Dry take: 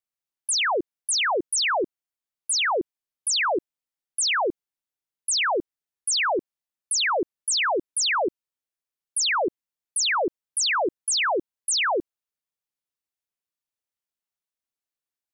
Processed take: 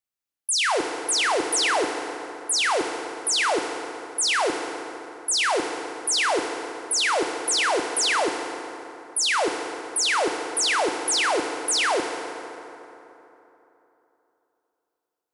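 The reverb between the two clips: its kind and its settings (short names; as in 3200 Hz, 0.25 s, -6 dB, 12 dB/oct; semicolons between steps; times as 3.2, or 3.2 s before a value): FDN reverb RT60 3.3 s, high-frequency decay 0.55×, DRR 4 dB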